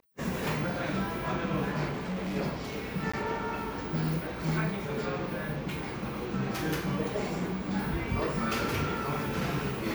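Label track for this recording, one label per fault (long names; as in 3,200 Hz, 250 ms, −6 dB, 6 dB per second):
1.890000	2.370000	clipping −30.5 dBFS
3.120000	3.130000	drop-out 15 ms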